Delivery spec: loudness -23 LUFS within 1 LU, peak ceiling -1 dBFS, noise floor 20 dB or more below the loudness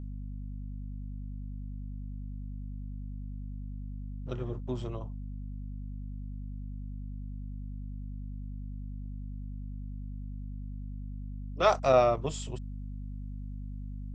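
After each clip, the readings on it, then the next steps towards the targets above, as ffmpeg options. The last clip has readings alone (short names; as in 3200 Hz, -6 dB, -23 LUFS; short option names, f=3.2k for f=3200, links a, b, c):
hum 50 Hz; harmonics up to 250 Hz; hum level -36 dBFS; loudness -36.0 LUFS; peak -10.5 dBFS; loudness target -23.0 LUFS
-> -af "bandreject=f=50:t=h:w=6,bandreject=f=100:t=h:w=6,bandreject=f=150:t=h:w=6,bandreject=f=200:t=h:w=6,bandreject=f=250:t=h:w=6"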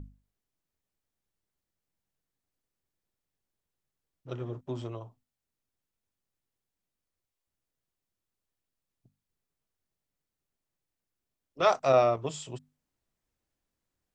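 hum none; loudness -28.0 LUFS; peak -11.0 dBFS; loudness target -23.0 LUFS
-> -af "volume=5dB"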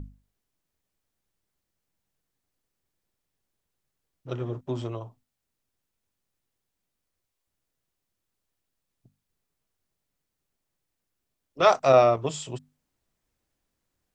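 loudness -23.0 LUFS; peak -6.0 dBFS; noise floor -83 dBFS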